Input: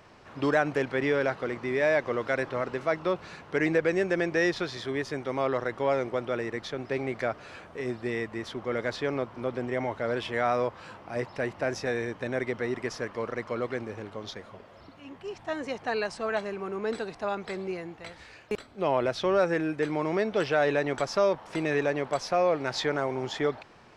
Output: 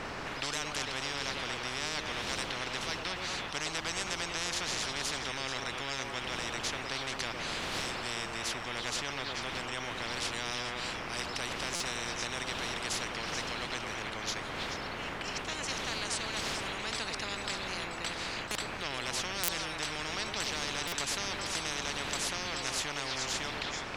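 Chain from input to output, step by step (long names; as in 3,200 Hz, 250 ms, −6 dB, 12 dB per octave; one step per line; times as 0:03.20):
wind on the microphone 310 Hz −33 dBFS
on a send: echo through a band-pass that steps 108 ms, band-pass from 390 Hz, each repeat 1.4 octaves, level −3 dB
on the sum: buffer that repeats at 0:11.75/0:19.43/0:20.87, samples 256, times 8
every bin compressed towards the loudest bin 10 to 1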